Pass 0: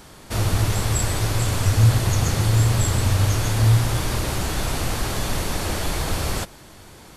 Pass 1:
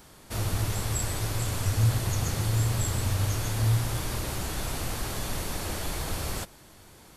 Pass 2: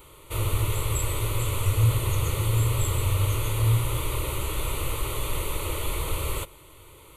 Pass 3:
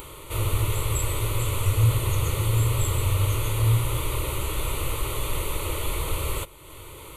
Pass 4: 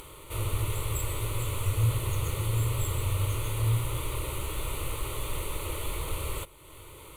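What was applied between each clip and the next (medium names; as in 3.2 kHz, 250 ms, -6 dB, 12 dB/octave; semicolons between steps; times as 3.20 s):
treble shelf 11 kHz +7.5 dB; trim -8 dB
static phaser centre 1.1 kHz, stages 8; trim +5.5 dB
upward compressor, threshold -34 dBFS; trim +1 dB
careless resampling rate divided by 2×, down none, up hold; trim -5.5 dB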